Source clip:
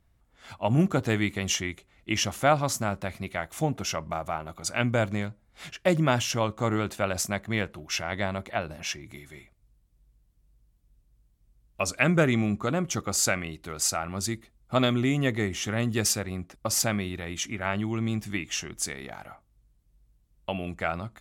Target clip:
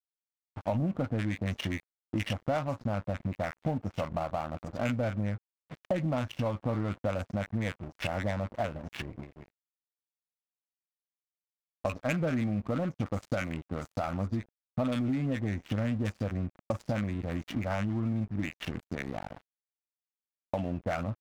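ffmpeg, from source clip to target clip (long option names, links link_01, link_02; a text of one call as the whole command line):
ffmpeg -i in.wav -filter_complex "[0:a]equalizer=frequency=100:width_type=o:width=0.33:gain=5,equalizer=frequency=250:width_type=o:width=0.33:gain=5,equalizer=frequency=400:width_type=o:width=0.33:gain=-11,asplit=2[link_01][link_02];[link_02]asoftclip=type=hard:threshold=-25dB,volume=-4dB[link_03];[link_01][link_03]amix=inputs=2:normalize=0,acrossover=split=1200|5900[link_04][link_05][link_06];[link_04]adelay=50[link_07];[link_05]adelay=90[link_08];[link_07][link_08][link_06]amix=inputs=3:normalize=0,adynamicsmooth=sensitivity=1.5:basefreq=710,agate=range=-33dB:threshold=-47dB:ratio=3:detection=peak,equalizer=frequency=520:width=1.8:gain=4,aeval=exprs='sgn(val(0))*max(abs(val(0))-0.00631,0)':channel_layout=same,acompressor=threshold=-33dB:ratio=5,volume=4dB" out.wav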